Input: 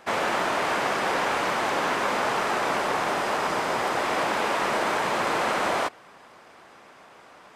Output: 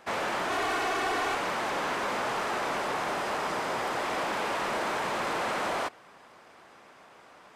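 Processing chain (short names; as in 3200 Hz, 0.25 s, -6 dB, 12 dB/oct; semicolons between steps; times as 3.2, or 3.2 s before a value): 0.5–1.35 comb 2.7 ms, depth 94%; soft clip -20 dBFS, distortion -15 dB; gain -3.5 dB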